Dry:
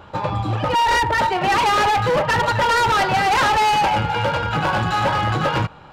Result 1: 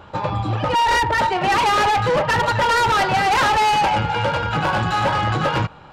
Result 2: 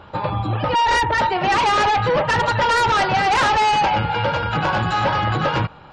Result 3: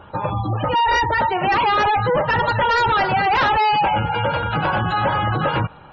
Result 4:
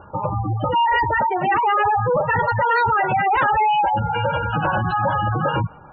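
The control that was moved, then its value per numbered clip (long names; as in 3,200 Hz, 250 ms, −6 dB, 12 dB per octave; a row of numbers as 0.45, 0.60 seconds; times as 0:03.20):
gate on every frequency bin, under each frame's peak: −55, −40, −25, −15 decibels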